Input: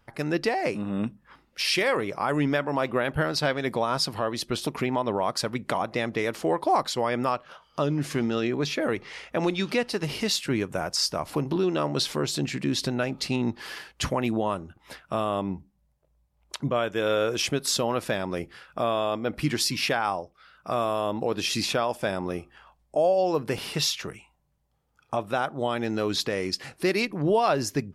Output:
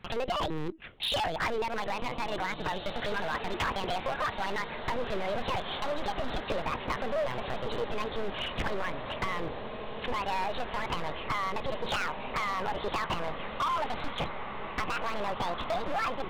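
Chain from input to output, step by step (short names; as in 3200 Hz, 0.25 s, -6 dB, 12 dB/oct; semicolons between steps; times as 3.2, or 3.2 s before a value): speed glide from 154% -> 189%; LPC vocoder at 8 kHz pitch kept; compressor 16:1, threshold -31 dBFS, peak gain reduction 15 dB; diffused feedback echo 1.894 s, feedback 66%, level -11 dB; hard clip -33.5 dBFS, distortion -8 dB; gain +7.5 dB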